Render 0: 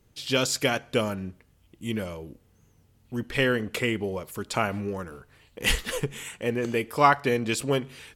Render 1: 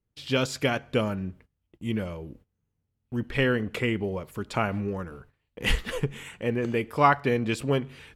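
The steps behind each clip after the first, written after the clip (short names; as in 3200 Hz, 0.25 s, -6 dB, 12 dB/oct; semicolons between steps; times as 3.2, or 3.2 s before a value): gate -52 dBFS, range -20 dB; tone controls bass +4 dB, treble -9 dB; gain -1 dB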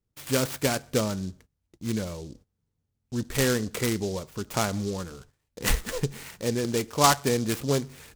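noise-modulated delay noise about 5100 Hz, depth 0.079 ms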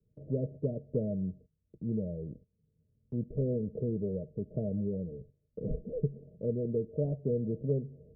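de-esser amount 55%; rippled Chebyshev low-pass 640 Hz, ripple 9 dB; three-band squash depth 40%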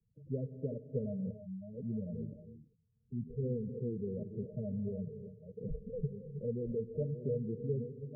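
reverse delay 0.69 s, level -9.5 dB; spectral gate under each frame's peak -10 dB strong; non-linear reverb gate 0.35 s rising, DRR 9.5 dB; gain -4.5 dB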